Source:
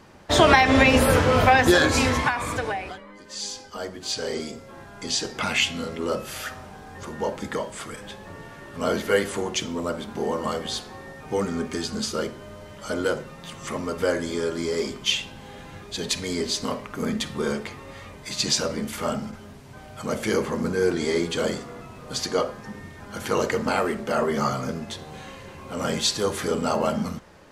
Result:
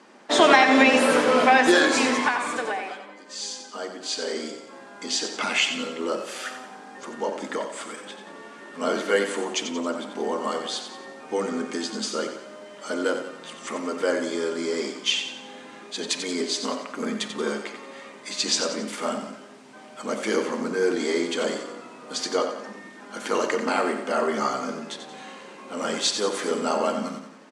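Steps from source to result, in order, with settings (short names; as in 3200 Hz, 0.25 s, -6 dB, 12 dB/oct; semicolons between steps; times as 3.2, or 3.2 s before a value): elliptic band-pass 240–9100 Hz, stop band 50 dB; feedback echo 90 ms, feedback 47%, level -8.5 dB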